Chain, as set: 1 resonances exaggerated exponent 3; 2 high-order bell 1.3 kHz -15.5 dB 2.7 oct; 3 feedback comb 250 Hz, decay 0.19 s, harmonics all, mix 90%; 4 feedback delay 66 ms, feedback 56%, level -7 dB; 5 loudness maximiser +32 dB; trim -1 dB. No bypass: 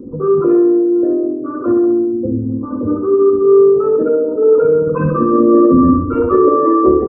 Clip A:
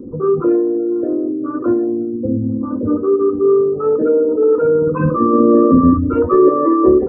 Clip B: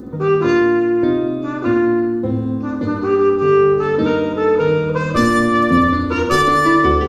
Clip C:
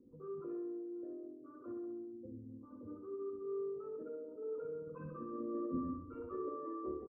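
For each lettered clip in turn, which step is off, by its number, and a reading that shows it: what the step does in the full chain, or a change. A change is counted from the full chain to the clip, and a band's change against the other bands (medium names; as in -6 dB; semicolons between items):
4, crest factor change +2.0 dB; 1, 500 Hz band -6.0 dB; 5, crest factor change +5.5 dB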